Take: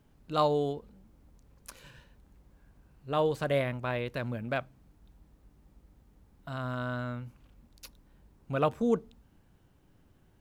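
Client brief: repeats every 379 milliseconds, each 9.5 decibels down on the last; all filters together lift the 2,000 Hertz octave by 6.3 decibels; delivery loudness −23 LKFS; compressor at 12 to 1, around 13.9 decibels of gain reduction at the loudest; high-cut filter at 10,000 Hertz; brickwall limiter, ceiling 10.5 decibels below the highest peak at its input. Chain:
low-pass filter 10,000 Hz
parametric band 2,000 Hz +8.5 dB
downward compressor 12 to 1, threshold −34 dBFS
brickwall limiter −32.5 dBFS
repeating echo 379 ms, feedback 33%, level −9.5 dB
level +21 dB

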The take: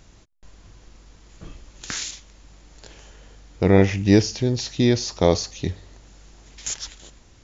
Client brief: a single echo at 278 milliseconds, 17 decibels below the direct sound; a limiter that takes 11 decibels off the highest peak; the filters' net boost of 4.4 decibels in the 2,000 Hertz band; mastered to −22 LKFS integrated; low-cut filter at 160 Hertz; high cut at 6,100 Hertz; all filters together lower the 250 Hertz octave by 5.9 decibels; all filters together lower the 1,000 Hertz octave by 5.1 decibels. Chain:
high-pass filter 160 Hz
low-pass filter 6,100 Hz
parametric band 250 Hz −6.5 dB
parametric band 1,000 Hz −8.5 dB
parametric band 2,000 Hz +7 dB
brickwall limiter −15.5 dBFS
single-tap delay 278 ms −17 dB
level +8 dB

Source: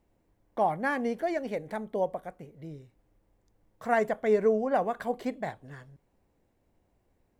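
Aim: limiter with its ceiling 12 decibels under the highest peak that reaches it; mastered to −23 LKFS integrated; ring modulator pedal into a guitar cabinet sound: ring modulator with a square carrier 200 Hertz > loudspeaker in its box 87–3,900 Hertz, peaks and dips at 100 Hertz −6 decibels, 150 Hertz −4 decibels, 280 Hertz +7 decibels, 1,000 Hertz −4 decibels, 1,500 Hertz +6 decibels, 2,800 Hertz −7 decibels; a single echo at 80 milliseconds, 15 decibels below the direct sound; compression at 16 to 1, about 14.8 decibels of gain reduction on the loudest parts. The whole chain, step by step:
downward compressor 16 to 1, threshold −34 dBFS
brickwall limiter −37 dBFS
single-tap delay 80 ms −15 dB
ring modulator with a square carrier 200 Hz
loudspeaker in its box 87–3,900 Hz, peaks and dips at 100 Hz −6 dB, 150 Hz −4 dB, 280 Hz +7 dB, 1,000 Hz −4 dB, 1,500 Hz +6 dB, 2,800 Hz −7 dB
level +23 dB

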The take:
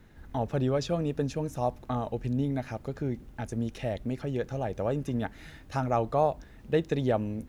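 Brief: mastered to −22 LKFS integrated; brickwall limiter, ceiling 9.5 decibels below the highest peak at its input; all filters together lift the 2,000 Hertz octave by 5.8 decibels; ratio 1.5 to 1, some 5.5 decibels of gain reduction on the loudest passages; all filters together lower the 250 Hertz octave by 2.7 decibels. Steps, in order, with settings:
parametric band 250 Hz −3.5 dB
parametric band 2,000 Hz +7.5 dB
downward compressor 1.5 to 1, threshold −36 dBFS
level +16.5 dB
brickwall limiter −11 dBFS

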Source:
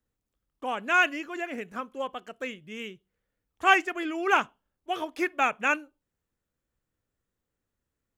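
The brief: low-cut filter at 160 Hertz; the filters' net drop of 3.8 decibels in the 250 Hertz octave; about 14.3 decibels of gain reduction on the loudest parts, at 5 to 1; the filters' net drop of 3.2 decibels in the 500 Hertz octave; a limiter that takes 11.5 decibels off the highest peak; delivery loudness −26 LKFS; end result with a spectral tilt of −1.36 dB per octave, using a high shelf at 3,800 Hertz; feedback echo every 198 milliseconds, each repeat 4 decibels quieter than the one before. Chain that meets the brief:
high-pass filter 160 Hz
parametric band 250 Hz −3.5 dB
parametric band 500 Hz −3 dB
high-shelf EQ 3,800 Hz −7 dB
downward compressor 5 to 1, threshold −32 dBFS
brickwall limiter −31.5 dBFS
repeating echo 198 ms, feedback 63%, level −4 dB
level +15 dB

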